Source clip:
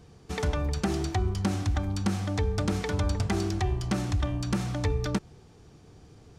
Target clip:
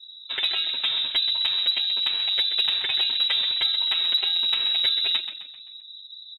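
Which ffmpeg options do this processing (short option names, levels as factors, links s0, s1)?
-filter_complex "[0:a]afftfilt=real='re*gte(hypot(re,im),0.00501)':imag='im*gte(hypot(re,im),0.00501)':win_size=1024:overlap=0.75,asplit=2[s0][s1];[s1]acompressor=threshold=0.0141:ratio=20,volume=1.19[s2];[s0][s2]amix=inputs=2:normalize=0,aeval=exprs='0.224*(cos(1*acos(clip(val(0)/0.224,-1,1)))-cos(1*PI/2))+0.00398*(cos(6*acos(clip(val(0)/0.224,-1,1)))-cos(6*PI/2))+0.00282*(cos(7*acos(clip(val(0)/0.224,-1,1)))-cos(7*PI/2))':c=same,aecho=1:1:7.5:0.94,lowpass=f=3400:t=q:w=0.5098,lowpass=f=3400:t=q:w=0.6013,lowpass=f=3400:t=q:w=0.9,lowpass=f=3400:t=q:w=2.563,afreqshift=-4000,acontrast=72,asplit=2[s3][s4];[s4]asplit=5[s5][s6][s7][s8][s9];[s5]adelay=130,afreqshift=-43,volume=0.299[s10];[s6]adelay=260,afreqshift=-86,volume=0.132[s11];[s7]adelay=390,afreqshift=-129,volume=0.0575[s12];[s8]adelay=520,afreqshift=-172,volume=0.0254[s13];[s9]adelay=650,afreqshift=-215,volume=0.0112[s14];[s10][s11][s12][s13][s14]amix=inputs=5:normalize=0[s15];[s3][s15]amix=inputs=2:normalize=0,volume=0.501"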